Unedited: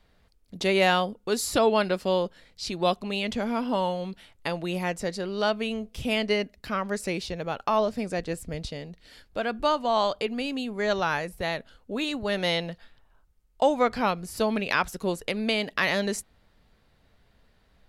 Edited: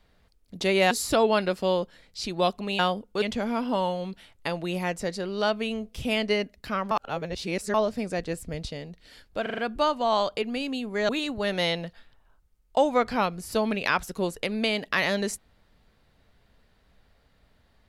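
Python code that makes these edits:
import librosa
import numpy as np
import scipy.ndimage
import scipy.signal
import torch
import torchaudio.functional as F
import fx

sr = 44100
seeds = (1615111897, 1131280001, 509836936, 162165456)

y = fx.edit(x, sr, fx.move(start_s=0.91, length_s=0.43, to_s=3.22),
    fx.reverse_span(start_s=6.91, length_s=0.83),
    fx.stutter(start_s=9.42, slice_s=0.04, count=5),
    fx.cut(start_s=10.93, length_s=1.01), tone=tone)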